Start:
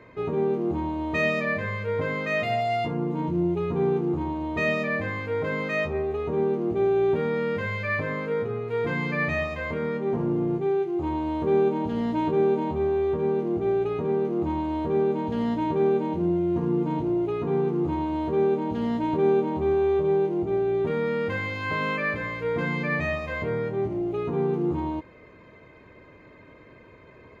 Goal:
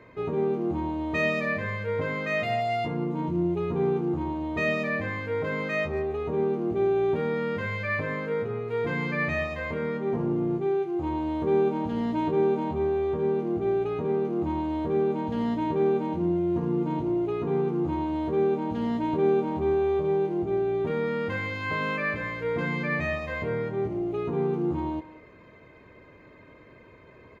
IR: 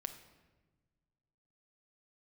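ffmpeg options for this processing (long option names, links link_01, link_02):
-filter_complex "[0:a]asplit=2[link_01][link_02];[link_02]adelay=190,highpass=300,lowpass=3400,asoftclip=type=hard:threshold=-19.5dB,volume=-16dB[link_03];[link_01][link_03]amix=inputs=2:normalize=0,volume=-1.5dB"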